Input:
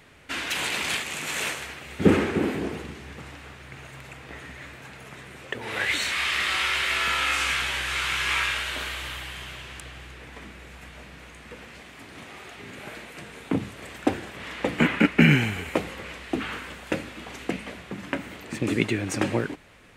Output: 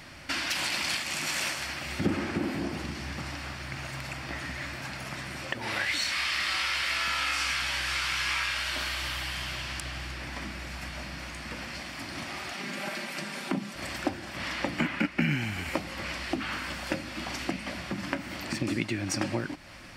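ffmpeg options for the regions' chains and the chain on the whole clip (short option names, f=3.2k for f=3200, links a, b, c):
-filter_complex "[0:a]asettb=1/sr,asplit=3[a][b][c];[a]atrim=end=12.534[d];[b]atrim=start=12.53:end=13.75,asetpts=PTS-STARTPTS,afade=t=in:d=0.004:c=qsin,afade=t=out:st=1.216:d=0.004:c=qsin,highpass=f=160:w=0.5412,highpass=f=160:w=1.3066,aecho=1:1:5.1:0.55,atrim=end_sample=53802[e];[c]atrim=start=13.746[f];[d][e]acrossfade=d=0.004:c1=hsin:c2=qsin[g];[g][f]acrossfade=d=0.004:c1=qsin:c2=hsin,superequalizer=7b=0.316:14b=2.51,acompressor=threshold=-38dB:ratio=2.5,volume=6dB"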